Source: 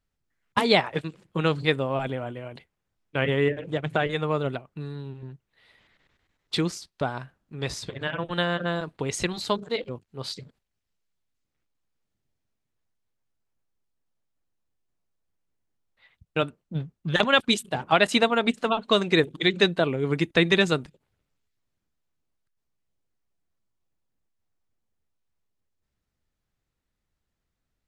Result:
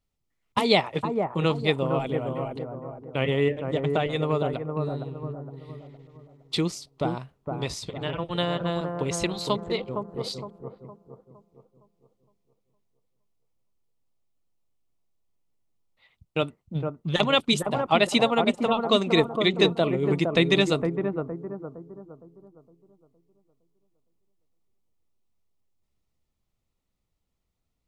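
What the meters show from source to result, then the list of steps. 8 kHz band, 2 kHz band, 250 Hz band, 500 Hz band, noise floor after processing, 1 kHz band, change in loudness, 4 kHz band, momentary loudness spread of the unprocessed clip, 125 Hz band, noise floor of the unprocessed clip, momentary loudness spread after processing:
0.0 dB, −4.0 dB, +1.5 dB, +1.0 dB, −78 dBFS, 0.0 dB, −0.5 dB, −0.5 dB, 16 LU, +1.5 dB, −81 dBFS, 15 LU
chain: parametric band 1,600 Hz −12.5 dB 0.32 octaves
bucket-brigade delay 462 ms, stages 4,096, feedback 40%, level −5 dB

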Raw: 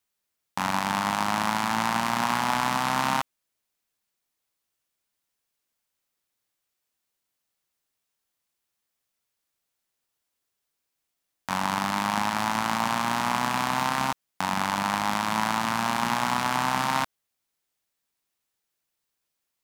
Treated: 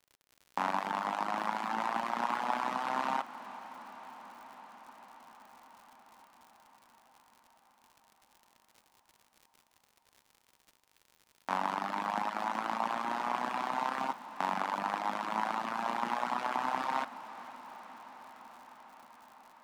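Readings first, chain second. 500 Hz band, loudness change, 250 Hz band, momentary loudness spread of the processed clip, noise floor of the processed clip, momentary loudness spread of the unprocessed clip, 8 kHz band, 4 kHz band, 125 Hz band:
−5.0 dB, −8.5 dB, −11.5 dB, 18 LU, −72 dBFS, 4 LU, −18.5 dB, −14.0 dB, −17.5 dB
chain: Bessel high-pass filter 480 Hz, order 4
reverb reduction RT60 1.8 s
spectral tilt −4.5 dB per octave
surface crackle 100 per second −44 dBFS
on a send: feedback delay with all-pass diffusion 455 ms, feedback 76%, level −16 dB
on the sum: level −2.5 dB

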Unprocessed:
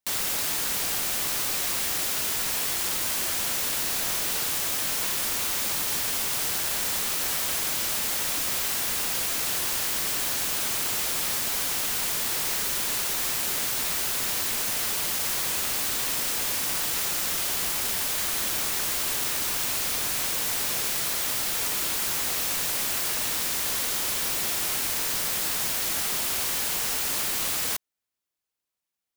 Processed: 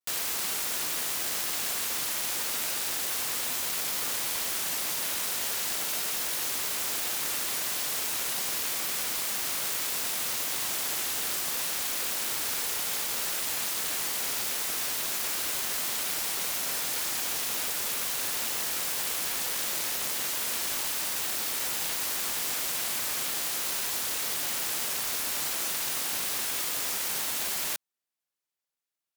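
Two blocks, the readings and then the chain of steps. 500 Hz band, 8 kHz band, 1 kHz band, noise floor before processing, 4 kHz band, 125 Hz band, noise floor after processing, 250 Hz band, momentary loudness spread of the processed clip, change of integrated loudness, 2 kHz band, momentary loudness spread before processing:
−3.5 dB, −3.0 dB, −3.0 dB, −38 dBFS, −3.0 dB, −8.5 dB, −73 dBFS, −5.0 dB, 0 LU, −3.5 dB, −3.0 dB, 0 LU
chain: ring modulation 470 Hz
pitch vibrato 0.34 Hz 25 cents
low-shelf EQ 120 Hz −11 dB

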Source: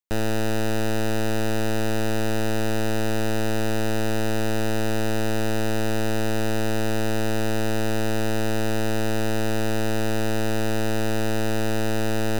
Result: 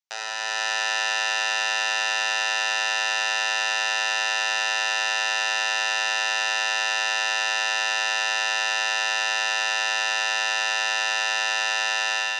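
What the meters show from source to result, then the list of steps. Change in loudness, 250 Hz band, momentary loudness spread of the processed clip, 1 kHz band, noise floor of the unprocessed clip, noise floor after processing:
+3.5 dB, below −30 dB, 0 LU, +4.5 dB, −21 dBFS, −27 dBFS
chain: high-shelf EQ 3,300 Hz +11.5 dB
automatic gain control
elliptic band-pass filter 750–6,000 Hz, stop band 70 dB
spring reverb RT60 2.4 s, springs 32 ms, chirp 70 ms, DRR −1 dB
level −3 dB

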